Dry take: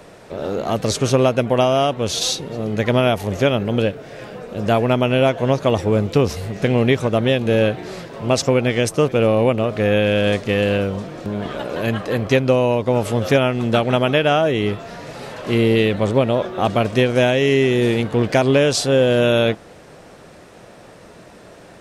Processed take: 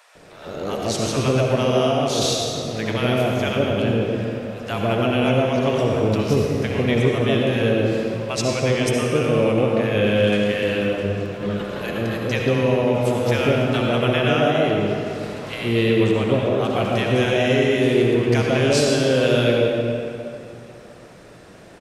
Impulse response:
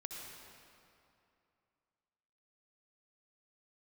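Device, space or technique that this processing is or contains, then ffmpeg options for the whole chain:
stairwell: -filter_complex "[0:a]acrossover=split=800[link_01][link_02];[link_01]adelay=150[link_03];[link_03][link_02]amix=inputs=2:normalize=0[link_04];[1:a]atrim=start_sample=2205[link_05];[link_04][link_05]afir=irnorm=-1:irlink=0,volume=1dB"

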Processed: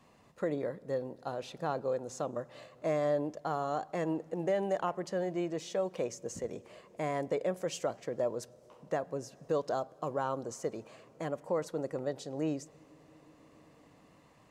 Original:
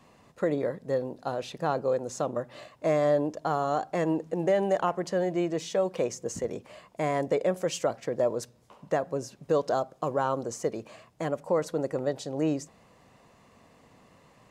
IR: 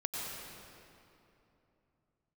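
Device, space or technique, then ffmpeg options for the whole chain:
compressed reverb return: -filter_complex "[0:a]asplit=2[link_01][link_02];[1:a]atrim=start_sample=2205[link_03];[link_02][link_03]afir=irnorm=-1:irlink=0,acompressor=threshold=-38dB:ratio=6,volume=-12dB[link_04];[link_01][link_04]amix=inputs=2:normalize=0,volume=-6.5dB"

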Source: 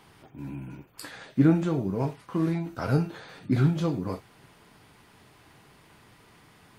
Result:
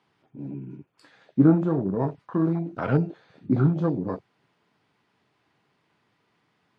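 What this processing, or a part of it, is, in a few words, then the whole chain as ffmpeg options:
over-cleaned archive recording: -af "highpass=130,lowpass=5200,afwtdn=0.0158,volume=3.5dB"

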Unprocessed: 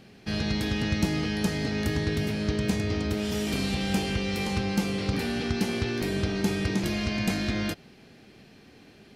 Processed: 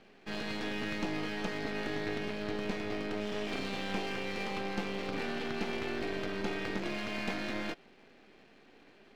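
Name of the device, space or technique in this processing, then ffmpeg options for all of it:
crystal radio: -af "highpass=310,lowpass=3000,aeval=exprs='if(lt(val(0),0),0.251*val(0),val(0))':channel_layout=same"

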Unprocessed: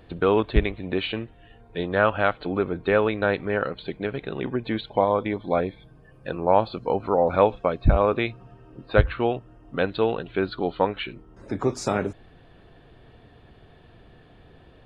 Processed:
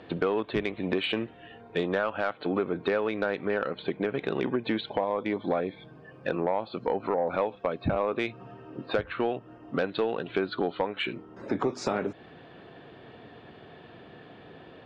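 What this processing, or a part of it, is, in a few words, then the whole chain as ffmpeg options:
AM radio: -filter_complex "[0:a]highpass=180,lowpass=4200,acompressor=threshold=-29dB:ratio=6,asoftclip=type=tanh:threshold=-21dB,asettb=1/sr,asplit=3[link_01][link_02][link_03];[link_01]atrim=end=3.784[link_04];[link_02]atrim=start=3.78:end=4.18,asetpts=PTS-STARTPTS,afade=type=in:duration=0.004:curve=qsin,afade=type=out:start_time=0.396:duration=0.004:curve=qsin,equalizer=frequency=5400:width_type=o:width=1.4:gain=-7.5[link_05];[link_03]atrim=start=4.176[link_06];[link_04][link_05]acrossfade=duration=0.004:curve1=hsin:curve2=qsin[link_07];[link_07][link_06]acrossfade=duration=0.004:curve1=qsin:curve2=hsin,volume=6dB"

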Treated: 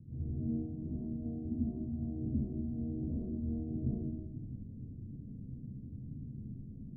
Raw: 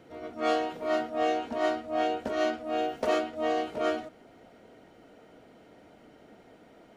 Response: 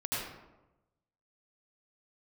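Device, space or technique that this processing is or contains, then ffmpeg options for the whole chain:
club heard from the street: -filter_complex "[0:a]alimiter=limit=-23.5dB:level=0:latency=1:release=407,lowpass=frequency=170:width=0.5412,lowpass=frequency=170:width=1.3066[link_01];[1:a]atrim=start_sample=2205[link_02];[link_01][link_02]afir=irnorm=-1:irlink=0,volume=14.5dB"

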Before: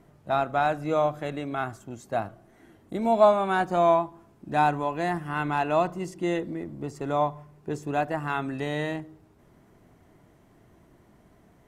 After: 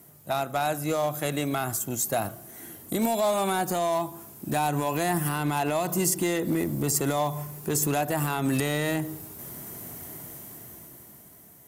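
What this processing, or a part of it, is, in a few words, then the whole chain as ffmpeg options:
FM broadcast chain: -filter_complex "[0:a]highpass=73,equalizer=frequency=140:width=4.9:gain=3,dynaudnorm=framelen=280:gausssize=11:maxgain=16dB,acrossover=split=940|2300[link_01][link_02][link_03];[link_01]acompressor=threshold=-18dB:ratio=4[link_04];[link_02]acompressor=threshold=-31dB:ratio=4[link_05];[link_03]acompressor=threshold=-39dB:ratio=4[link_06];[link_04][link_05][link_06]amix=inputs=3:normalize=0,aemphasis=mode=production:type=50fm,alimiter=limit=-16.5dB:level=0:latency=1:release=95,asoftclip=type=hard:threshold=-19dB,lowpass=frequency=15000:width=0.5412,lowpass=frequency=15000:width=1.3066,aemphasis=mode=production:type=50fm"

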